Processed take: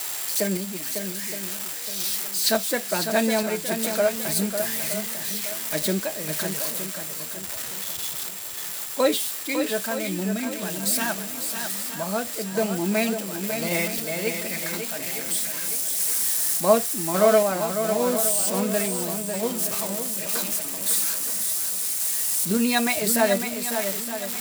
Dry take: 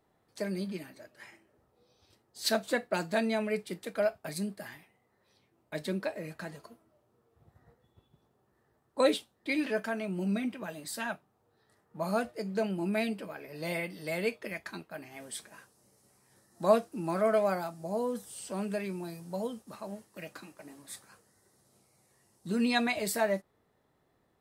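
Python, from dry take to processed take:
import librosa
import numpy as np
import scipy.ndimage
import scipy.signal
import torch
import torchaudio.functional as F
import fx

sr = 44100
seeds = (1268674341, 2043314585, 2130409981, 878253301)

y = x + 0.5 * 10.0 ** (-26.5 / 20.0) * np.diff(np.sign(x), prepend=np.sign(x[:1]))
y = fx.tremolo_random(y, sr, seeds[0], hz=3.5, depth_pct=55)
y = y + 10.0 ** (-47.0 / 20.0) * np.sin(2.0 * np.pi * 7600.0 * np.arange(len(y)) / sr)
y = fx.echo_swing(y, sr, ms=917, ratio=1.5, feedback_pct=32, wet_db=-7.5)
y = y * librosa.db_to_amplitude(9.0)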